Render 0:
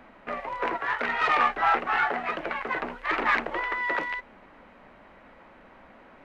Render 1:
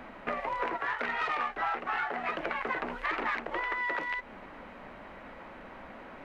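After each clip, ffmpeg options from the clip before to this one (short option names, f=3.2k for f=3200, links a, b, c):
-af "acompressor=threshold=-35dB:ratio=6,volume=5dB"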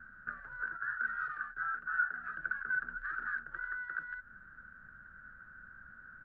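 -af "firequalizer=gain_entry='entry(130,0);entry(270,-17);entry(600,-25);entry(980,-24);entry(1500,14);entry(2100,-27);entry(4500,-22)':delay=0.05:min_phase=1,volume=-5.5dB"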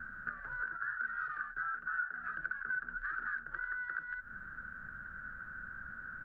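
-af "acompressor=threshold=-47dB:ratio=2.5,volume=7.5dB"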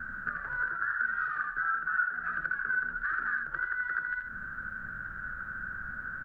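-af "aecho=1:1:81:0.531,volume=6dB"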